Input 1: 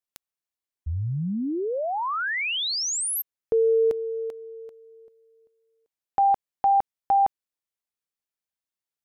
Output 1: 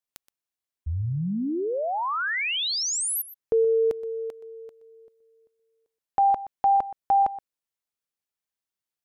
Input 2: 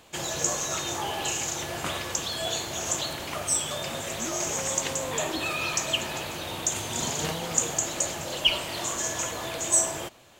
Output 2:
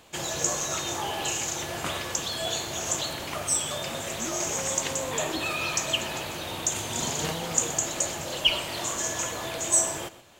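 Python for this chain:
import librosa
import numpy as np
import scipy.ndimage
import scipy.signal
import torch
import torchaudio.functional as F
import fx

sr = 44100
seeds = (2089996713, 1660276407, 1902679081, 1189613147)

y = x + 10.0 ** (-16.5 / 20.0) * np.pad(x, (int(123 * sr / 1000.0), 0))[:len(x)]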